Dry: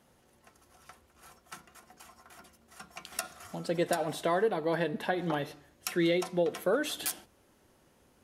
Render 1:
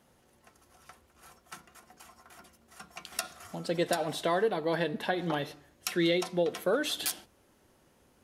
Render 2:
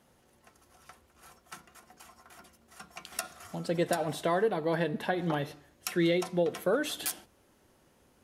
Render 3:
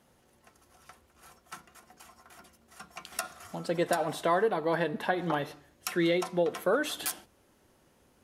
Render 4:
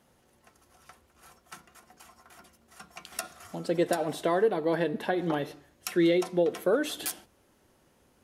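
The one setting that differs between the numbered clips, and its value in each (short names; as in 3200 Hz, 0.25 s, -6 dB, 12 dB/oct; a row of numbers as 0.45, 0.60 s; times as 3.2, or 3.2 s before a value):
dynamic EQ, frequency: 4000, 120, 1100, 360 Hz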